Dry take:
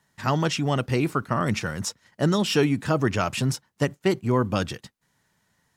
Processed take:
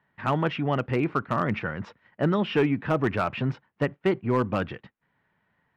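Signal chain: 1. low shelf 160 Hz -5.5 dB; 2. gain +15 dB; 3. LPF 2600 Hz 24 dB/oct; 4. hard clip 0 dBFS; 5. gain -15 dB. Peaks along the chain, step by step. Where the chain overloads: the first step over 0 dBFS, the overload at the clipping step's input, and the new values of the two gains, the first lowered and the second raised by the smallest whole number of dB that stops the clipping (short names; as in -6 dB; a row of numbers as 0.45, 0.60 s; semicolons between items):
-9.5, +5.5, +5.5, 0.0, -15.0 dBFS; step 2, 5.5 dB; step 2 +9 dB, step 5 -9 dB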